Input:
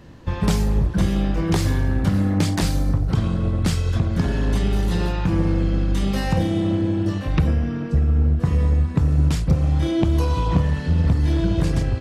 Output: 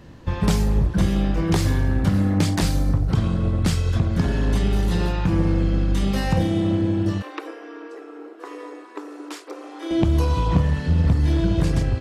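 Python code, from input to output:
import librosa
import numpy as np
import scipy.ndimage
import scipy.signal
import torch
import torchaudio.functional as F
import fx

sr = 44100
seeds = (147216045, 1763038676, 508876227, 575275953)

y = fx.cheby_ripple_highpass(x, sr, hz=290.0, ripple_db=6, at=(7.22, 9.91))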